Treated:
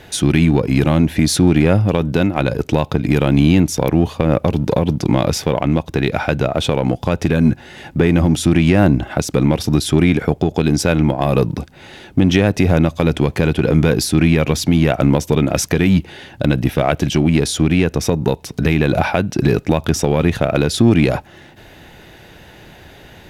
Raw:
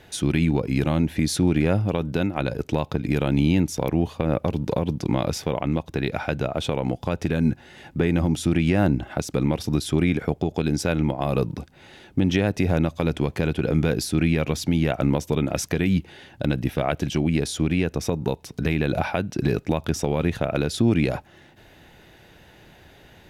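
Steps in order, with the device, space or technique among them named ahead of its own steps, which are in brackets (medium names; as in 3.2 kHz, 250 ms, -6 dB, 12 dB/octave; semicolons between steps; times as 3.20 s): parallel distortion (in parallel at -9 dB: hard clipper -24 dBFS, distortion -5 dB); on the sum: trim +6.5 dB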